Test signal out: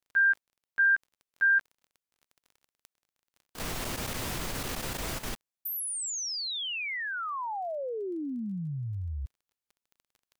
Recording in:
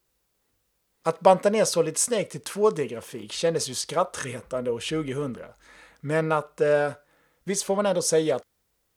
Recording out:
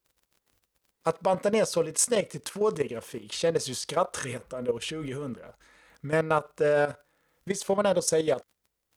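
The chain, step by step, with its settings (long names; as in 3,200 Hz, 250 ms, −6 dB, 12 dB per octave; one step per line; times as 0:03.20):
surface crackle 26 per second −47 dBFS
output level in coarse steps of 12 dB
level +2 dB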